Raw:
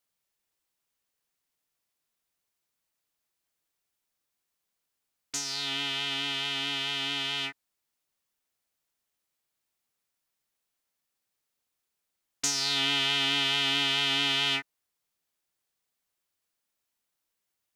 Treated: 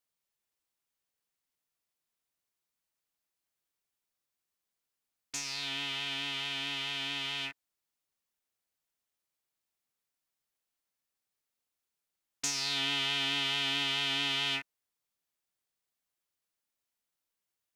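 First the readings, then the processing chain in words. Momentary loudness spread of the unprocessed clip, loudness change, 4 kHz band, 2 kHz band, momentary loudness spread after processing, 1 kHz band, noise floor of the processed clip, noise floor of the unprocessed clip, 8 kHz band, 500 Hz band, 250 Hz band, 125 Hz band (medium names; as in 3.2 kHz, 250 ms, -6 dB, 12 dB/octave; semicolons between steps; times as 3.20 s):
7 LU, -4.5 dB, -5.0 dB, -4.0 dB, 7 LU, -5.0 dB, under -85 dBFS, -83 dBFS, -5.0 dB, -5.5 dB, -5.0 dB, -4.0 dB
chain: rattle on loud lows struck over -55 dBFS, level -27 dBFS; trim -5 dB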